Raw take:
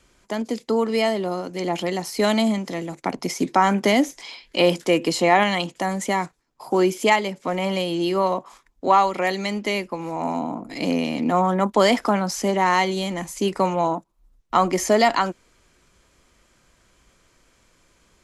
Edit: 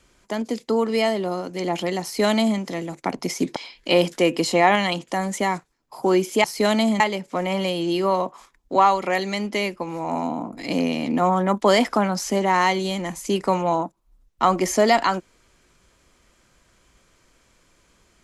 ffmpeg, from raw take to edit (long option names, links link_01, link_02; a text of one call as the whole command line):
ffmpeg -i in.wav -filter_complex "[0:a]asplit=4[link_01][link_02][link_03][link_04];[link_01]atrim=end=3.562[link_05];[link_02]atrim=start=4.238:end=7.122[link_06];[link_03]atrim=start=2.028:end=2.592[link_07];[link_04]atrim=start=7.118[link_08];[link_05][link_06]acrossfade=duration=0.004:curve1=hsin:curve2=hsin[link_09];[link_09][link_07]acrossfade=duration=0.004:curve1=hsin:curve2=hsin[link_10];[link_10][link_08]acrossfade=duration=0.004:curve1=hsin:curve2=hsin" out.wav